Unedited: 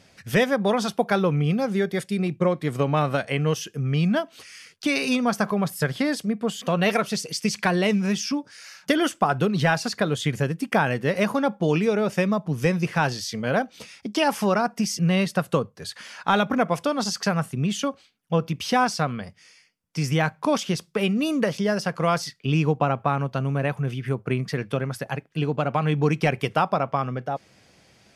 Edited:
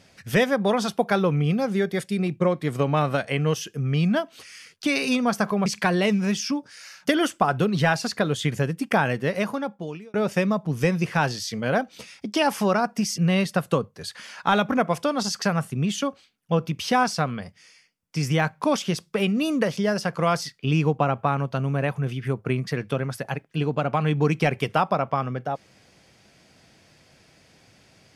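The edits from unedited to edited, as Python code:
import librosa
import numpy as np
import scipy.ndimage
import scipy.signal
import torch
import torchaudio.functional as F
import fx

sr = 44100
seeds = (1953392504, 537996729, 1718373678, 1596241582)

y = fx.edit(x, sr, fx.cut(start_s=5.66, length_s=1.81),
    fx.fade_out_span(start_s=10.93, length_s=1.02), tone=tone)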